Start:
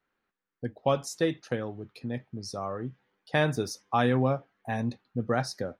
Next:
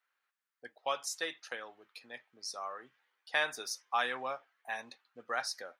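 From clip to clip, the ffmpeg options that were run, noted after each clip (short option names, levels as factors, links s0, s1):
-af "highpass=1100"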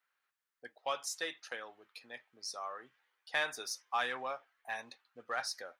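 -filter_complex "[0:a]asubboost=boost=3:cutoff=85,asplit=2[s0][s1];[s1]asoftclip=type=tanh:threshold=0.0251,volume=0.501[s2];[s0][s2]amix=inputs=2:normalize=0,volume=0.631"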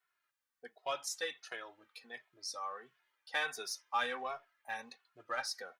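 -filter_complex "[0:a]asplit=2[s0][s1];[s1]adelay=2.3,afreqshift=-1.4[s2];[s0][s2]amix=inputs=2:normalize=1,volume=1.33"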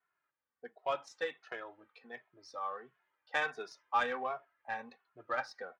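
-af "highpass=57,adynamicsmooth=sensitivity=1.5:basefreq=1800,volume=1.68"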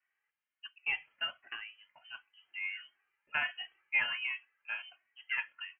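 -af "lowpass=f=2800:t=q:w=0.5098,lowpass=f=2800:t=q:w=0.6013,lowpass=f=2800:t=q:w=0.9,lowpass=f=2800:t=q:w=2.563,afreqshift=-3300"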